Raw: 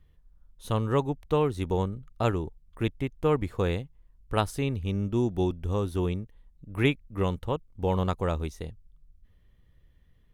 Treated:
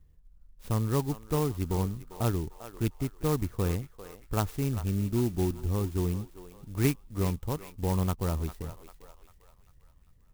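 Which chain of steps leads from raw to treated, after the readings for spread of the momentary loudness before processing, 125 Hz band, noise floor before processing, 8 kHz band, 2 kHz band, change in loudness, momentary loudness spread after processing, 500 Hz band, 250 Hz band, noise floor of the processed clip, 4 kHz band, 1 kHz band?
8 LU, +0.5 dB, −61 dBFS, +7.0 dB, −6.5 dB, −2.0 dB, 11 LU, −5.5 dB, −1.0 dB, −59 dBFS, −4.5 dB, −5.0 dB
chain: low-shelf EQ 380 Hz +6 dB
feedback echo with a high-pass in the loop 397 ms, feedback 53%, high-pass 690 Hz, level −10.5 dB
dynamic equaliser 520 Hz, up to −5 dB, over −40 dBFS, Q 2.4
converter with an unsteady clock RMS 0.071 ms
level −5 dB

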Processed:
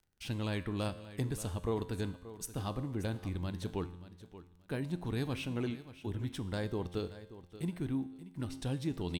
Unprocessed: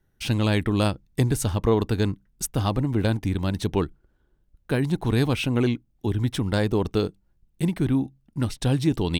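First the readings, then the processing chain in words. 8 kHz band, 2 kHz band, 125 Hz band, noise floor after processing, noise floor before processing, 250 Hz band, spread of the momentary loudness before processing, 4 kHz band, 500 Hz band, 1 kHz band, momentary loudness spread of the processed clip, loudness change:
−13.0 dB, −13.0 dB, −13.5 dB, −61 dBFS, −67 dBFS, −13.0 dB, 6 LU, −13.5 dB, −13.0 dB, −13.0 dB, 8 LU, −13.5 dB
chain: repeating echo 580 ms, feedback 20%, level −15 dB
surface crackle 30 per second −42 dBFS
tuned comb filter 88 Hz, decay 0.96 s, harmonics all, mix 60%
level −6.5 dB

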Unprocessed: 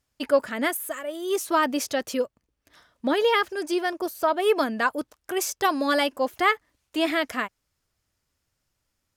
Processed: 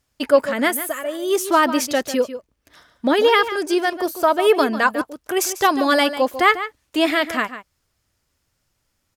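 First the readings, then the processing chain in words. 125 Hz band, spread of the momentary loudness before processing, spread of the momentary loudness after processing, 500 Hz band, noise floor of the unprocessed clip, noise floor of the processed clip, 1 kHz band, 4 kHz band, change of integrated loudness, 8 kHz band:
can't be measured, 9 LU, 9 LU, +6.0 dB, −79 dBFS, −72 dBFS, +6.5 dB, +6.0 dB, +6.0 dB, +6.0 dB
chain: slap from a distant wall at 25 metres, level −12 dB
level +6 dB

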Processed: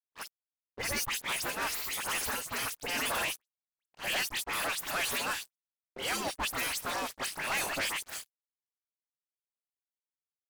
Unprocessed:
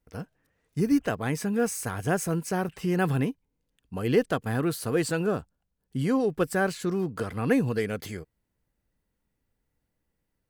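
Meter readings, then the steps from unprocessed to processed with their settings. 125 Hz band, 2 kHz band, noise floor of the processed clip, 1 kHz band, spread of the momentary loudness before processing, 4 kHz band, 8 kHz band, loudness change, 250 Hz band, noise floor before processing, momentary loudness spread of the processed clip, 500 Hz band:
−21.5 dB, +1.0 dB, below −85 dBFS, −2.0 dB, 13 LU, +8.5 dB, +3.5 dB, −5.0 dB, −20.0 dB, −80 dBFS, 10 LU, −14.0 dB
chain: low-shelf EQ 340 Hz −5 dB
on a send: echo with shifted repeats 171 ms, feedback 56%, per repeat +74 Hz, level −20.5 dB
on the sum: gate on every frequency bin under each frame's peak −20 dB weak
dead-zone distortion −52 dBFS
all-pass dispersion highs, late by 73 ms, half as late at 3,000 Hz
pitch vibrato 2.3 Hz 16 cents
leveller curve on the samples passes 5

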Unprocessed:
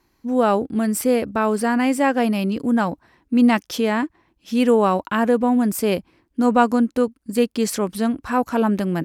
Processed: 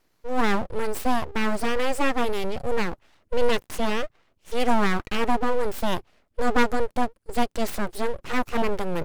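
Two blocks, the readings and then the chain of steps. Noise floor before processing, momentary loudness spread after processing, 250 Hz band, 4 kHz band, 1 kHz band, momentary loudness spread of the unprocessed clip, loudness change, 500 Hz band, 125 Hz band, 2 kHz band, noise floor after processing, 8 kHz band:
−67 dBFS, 7 LU, −10.5 dB, −0.5 dB, −4.0 dB, 7 LU, −6.5 dB, −5.5 dB, −6.0 dB, −1.5 dB, −69 dBFS, −8.0 dB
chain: phase distortion by the signal itself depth 0.085 ms
full-wave rectification
level −2 dB

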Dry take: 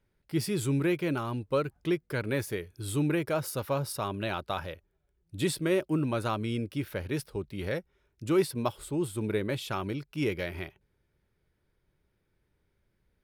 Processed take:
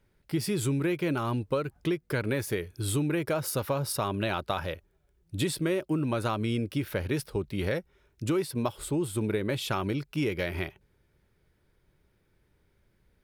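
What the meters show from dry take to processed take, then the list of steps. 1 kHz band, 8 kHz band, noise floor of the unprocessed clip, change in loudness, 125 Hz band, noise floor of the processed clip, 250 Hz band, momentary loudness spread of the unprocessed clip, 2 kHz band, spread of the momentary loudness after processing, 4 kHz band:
+1.5 dB, +3.0 dB, −76 dBFS, +1.0 dB, +2.0 dB, −70 dBFS, +1.0 dB, 9 LU, +1.5 dB, 5 LU, +2.5 dB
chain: downward compressor, threshold −31 dBFS, peak gain reduction 11 dB
level +6 dB

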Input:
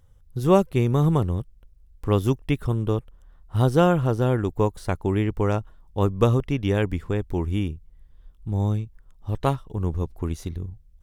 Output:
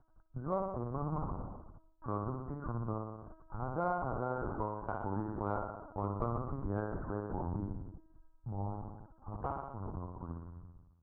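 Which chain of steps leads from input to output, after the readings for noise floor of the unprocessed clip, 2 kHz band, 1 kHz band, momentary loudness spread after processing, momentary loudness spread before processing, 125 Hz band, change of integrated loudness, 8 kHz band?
−54 dBFS, −14.5 dB, −8.5 dB, 13 LU, 14 LU, −17.0 dB, −15.5 dB, can't be measured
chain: fade-out on the ending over 2.62 s
Butterworth low-pass 1,500 Hz 72 dB per octave
harmonic and percussive parts rebalanced percussive −5 dB
low shelf with overshoot 550 Hz −8.5 dB, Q 1.5
downward compressor 3 to 1, threshold −42 dBFS, peak gain reduction 18.5 dB
flutter between parallel walls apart 10.4 metres, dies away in 1.1 s
linear-prediction vocoder at 8 kHz pitch kept
harmonic generator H 5 −31 dB, 7 −40 dB, 8 −44 dB, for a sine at −20.5 dBFS
level +3.5 dB

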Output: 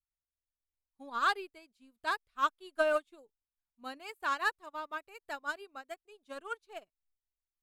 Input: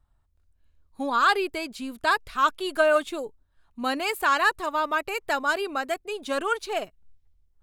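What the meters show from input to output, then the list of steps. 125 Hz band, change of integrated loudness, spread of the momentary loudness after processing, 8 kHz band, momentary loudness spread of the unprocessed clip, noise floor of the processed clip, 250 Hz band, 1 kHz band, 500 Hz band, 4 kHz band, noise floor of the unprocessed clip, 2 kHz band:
can't be measured, −9.5 dB, 18 LU, −13.5 dB, 11 LU, below −85 dBFS, −16.5 dB, −10.5 dB, −11.0 dB, −12.0 dB, −67 dBFS, −10.5 dB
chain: in parallel at −8 dB: hard clipping −19.5 dBFS, distortion −12 dB
on the sum: expander for the loud parts 2.5 to 1, over −34 dBFS
level −8.5 dB

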